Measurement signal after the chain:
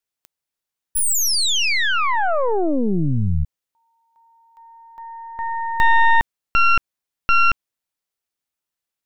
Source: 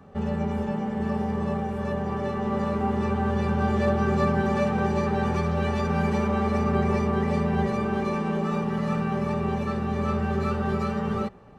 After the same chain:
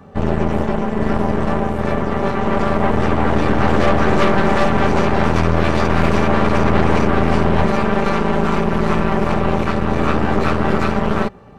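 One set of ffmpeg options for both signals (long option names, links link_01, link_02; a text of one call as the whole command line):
ffmpeg -i in.wav -af "aeval=exprs='0.266*(cos(1*acos(clip(val(0)/0.266,-1,1)))-cos(1*PI/2))+0.0188*(cos(3*acos(clip(val(0)/0.266,-1,1)))-cos(3*PI/2))+0.119*(cos(4*acos(clip(val(0)/0.266,-1,1)))-cos(4*PI/2))+0.0133*(cos(5*acos(clip(val(0)/0.266,-1,1)))-cos(5*PI/2))+0.015*(cos(8*acos(clip(val(0)/0.266,-1,1)))-cos(8*PI/2))':channel_layout=same,acontrast=86" out.wav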